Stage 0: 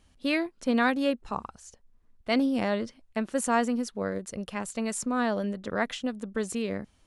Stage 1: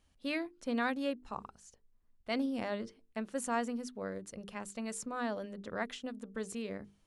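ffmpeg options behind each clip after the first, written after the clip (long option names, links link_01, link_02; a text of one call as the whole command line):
ffmpeg -i in.wav -af "bandreject=frequency=50:width_type=h:width=6,bandreject=frequency=100:width_type=h:width=6,bandreject=frequency=150:width_type=h:width=6,bandreject=frequency=200:width_type=h:width=6,bandreject=frequency=250:width_type=h:width=6,bandreject=frequency=300:width_type=h:width=6,bandreject=frequency=350:width_type=h:width=6,bandreject=frequency=400:width_type=h:width=6,bandreject=frequency=450:width_type=h:width=6,volume=-8.5dB" out.wav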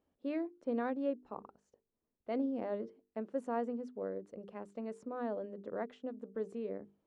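ffmpeg -i in.wav -af "bandpass=frequency=420:width_type=q:width=1.3:csg=0,volume=3dB" out.wav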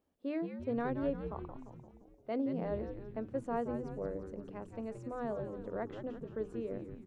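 ffmpeg -i in.wav -filter_complex "[0:a]asplit=9[link_01][link_02][link_03][link_04][link_05][link_06][link_07][link_08][link_09];[link_02]adelay=173,afreqshift=-99,volume=-8dB[link_10];[link_03]adelay=346,afreqshift=-198,volume=-12.2dB[link_11];[link_04]adelay=519,afreqshift=-297,volume=-16.3dB[link_12];[link_05]adelay=692,afreqshift=-396,volume=-20.5dB[link_13];[link_06]adelay=865,afreqshift=-495,volume=-24.6dB[link_14];[link_07]adelay=1038,afreqshift=-594,volume=-28.8dB[link_15];[link_08]adelay=1211,afreqshift=-693,volume=-32.9dB[link_16];[link_09]adelay=1384,afreqshift=-792,volume=-37.1dB[link_17];[link_01][link_10][link_11][link_12][link_13][link_14][link_15][link_16][link_17]amix=inputs=9:normalize=0" out.wav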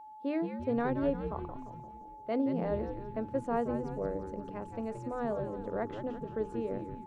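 ffmpeg -i in.wav -af "aeval=exprs='val(0)+0.00282*sin(2*PI*860*n/s)':channel_layout=same,volume=4dB" out.wav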